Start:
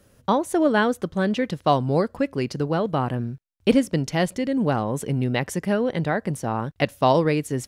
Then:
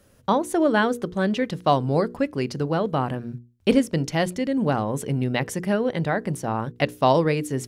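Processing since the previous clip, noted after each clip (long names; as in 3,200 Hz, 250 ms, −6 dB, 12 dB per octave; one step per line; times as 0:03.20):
mains-hum notches 60/120/180/240/300/360/420/480 Hz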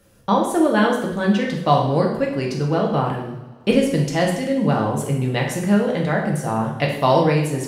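convolution reverb, pre-delay 3 ms, DRR −1 dB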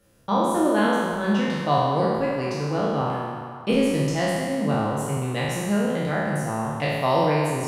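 peak hold with a decay on every bin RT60 1.61 s
feedback echo with a band-pass in the loop 179 ms, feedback 80%, band-pass 1,100 Hz, level −12 dB
level −7.5 dB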